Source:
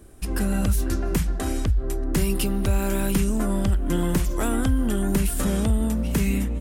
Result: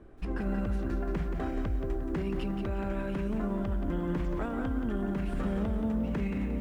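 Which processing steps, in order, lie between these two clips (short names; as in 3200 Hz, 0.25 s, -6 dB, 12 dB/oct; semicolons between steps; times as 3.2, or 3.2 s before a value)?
LPF 1900 Hz 12 dB/oct; bell 71 Hz -5.5 dB 1.9 oct; limiter -22.5 dBFS, peak gain reduction 9.5 dB; lo-fi delay 0.177 s, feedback 35%, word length 10-bit, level -6.5 dB; gain -2 dB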